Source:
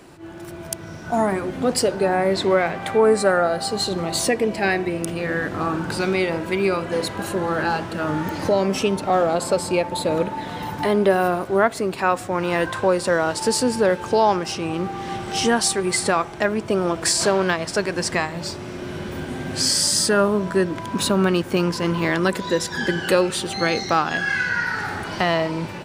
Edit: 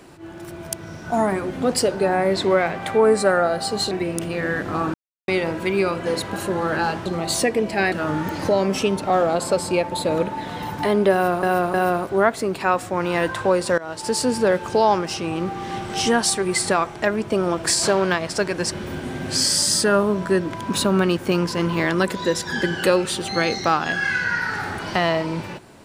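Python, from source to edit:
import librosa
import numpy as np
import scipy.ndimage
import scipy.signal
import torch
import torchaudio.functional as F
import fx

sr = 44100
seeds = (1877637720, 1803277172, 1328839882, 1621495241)

y = fx.edit(x, sr, fx.move(start_s=3.91, length_s=0.86, to_s=7.92),
    fx.silence(start_s=5.8, length_s=0.34),
    fx.repeat(start_s=11.12, length_s=0.31, count=3),
    fx.fade_in_from(start_s=13.16, length_s=0.65, curve='qsin', floor_db=-19.5),
    fx.cut(start_s=18.1, length_s=0.87), tone=tone)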